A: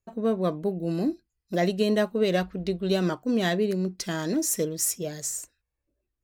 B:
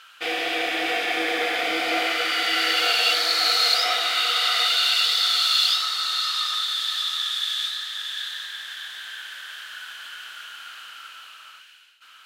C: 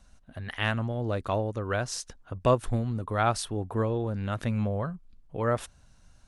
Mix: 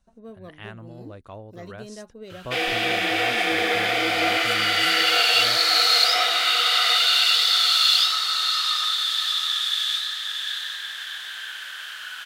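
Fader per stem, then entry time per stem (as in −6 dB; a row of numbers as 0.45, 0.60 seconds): −17.0, +2.0, −12.0 decibels; 0.00, 2.30, 0.00 seconds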